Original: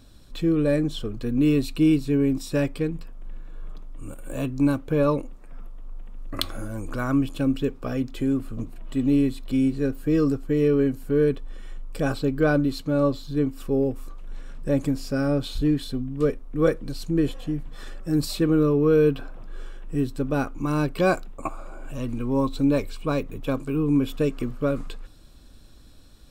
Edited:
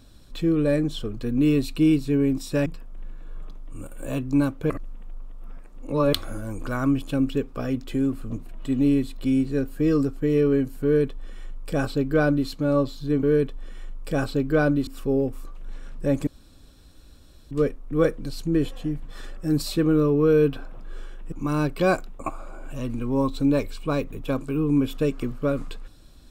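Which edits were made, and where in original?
2.66–2.93 cut
4.97–6.4 reverse
11.11–12.75 copy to 13.5
14.9–16.14 room tone
19.95–20.51 cut

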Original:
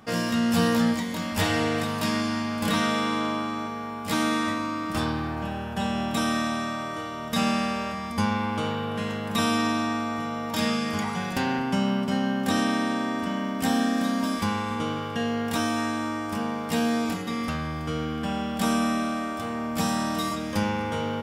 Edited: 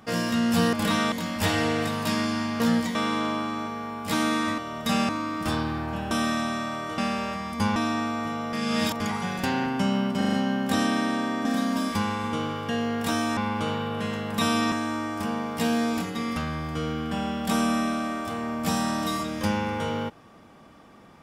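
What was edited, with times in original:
0.73–1.08 swap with 2.56–2.95
5.6–6.18 cut
7.05–7.56 move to 4.58
8.34–9.69 move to 15.84
10.46–10.93 reverse
12.1 stutter 0.04 s, 5 plays
13.22–13.92 cut

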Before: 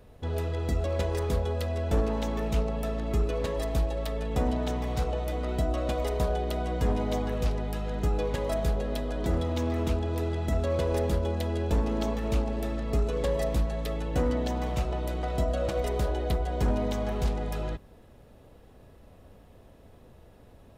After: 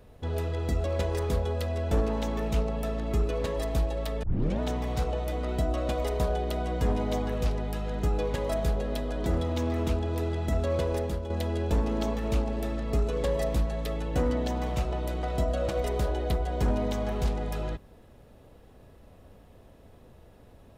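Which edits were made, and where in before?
4.23 tape start 0.37 s
10.78–11.3 fade out, to -8 dB

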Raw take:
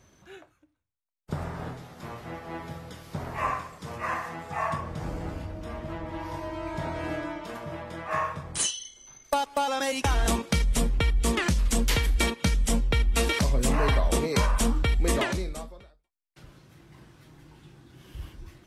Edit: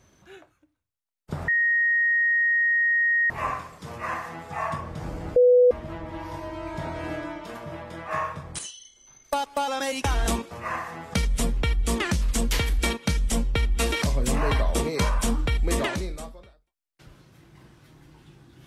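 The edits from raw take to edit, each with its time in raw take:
1.48–3.3 bleep 1870 Hz -18.5 dBFS
3.89–4.52 copy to 10.51
5.36–5.71 bleep 495 Hz -12.5 dBFS
8.59–9.42 fade in, from -12.5 dB

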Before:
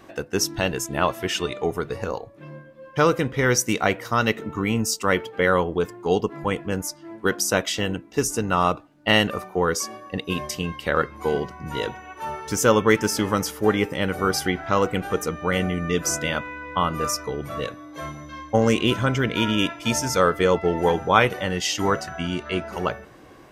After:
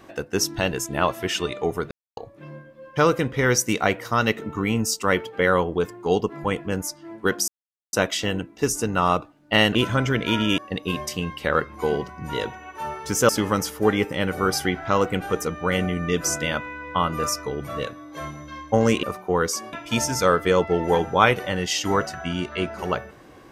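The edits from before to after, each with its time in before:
1.91–2.17 mute
7.48 insert silence 0.45 s
9.3–10 swap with 18.84–19.67
12.71–13.1 cut

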